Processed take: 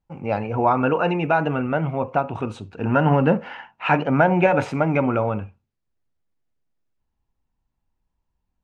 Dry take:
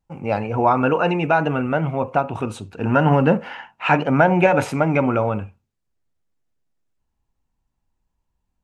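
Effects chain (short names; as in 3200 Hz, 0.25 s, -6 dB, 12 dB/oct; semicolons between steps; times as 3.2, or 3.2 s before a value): air absorption 86 m; gain -1.5 dB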